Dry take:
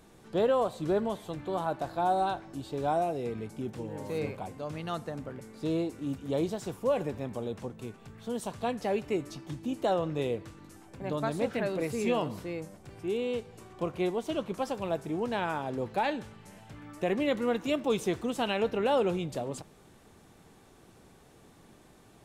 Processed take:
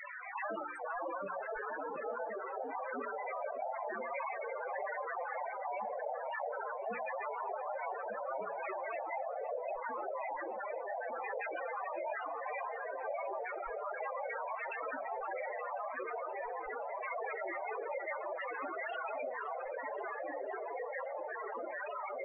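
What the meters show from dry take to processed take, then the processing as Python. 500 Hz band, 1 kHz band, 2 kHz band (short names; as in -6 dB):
-8.0 dB, -3.0 dB, +1.0 dB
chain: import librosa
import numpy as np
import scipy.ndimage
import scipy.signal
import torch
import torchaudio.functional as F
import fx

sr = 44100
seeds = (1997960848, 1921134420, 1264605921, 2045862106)

y = fx.octave_divider(x, sr, octaves=2, level_db=3.0)
y = fx.rider(y, sr, range_db=10, speed_s=0.5)
y = fx.filter_lfo_notch(y, sr, shape='saw_down', hz=6.9, low_hz=740.0, high_hz=4000.0, q=0.96)
y = fx.high_shelf(y, sr, hz=2000.0, db=-7.0)
y = fx.spec_gate(y, sr, threshold_db=-30, keep='weak')
y = fx.graphic_eq(y, sr, hz=(125, 250, 500, 1000, 2000, 4000), db=(-8, 9, 10, 3, 6, -6))
y = fx.echo_opening(y, sr, ms=598, hz=200, octaves=1, feedback_pct=70, wet_db=-3)
y = fx.echo_pitch(y, sr, ms=653, semitones=-2, count=3, db_per_echo=-6.0)
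y = fx.spec_topn(y, sr, count=8)
y = fx.hum_notches(y, sr, base_hz=60, count=8)
y = fx.echo_wet_highpass(y, sr, ms=526, feedback_pct=64, hz=1400.0, wet_db=-17.5)
y = fx.env_flatten(y, sr, amount_pct=70)
y = y * librosa.db_to_amplitude(10.5)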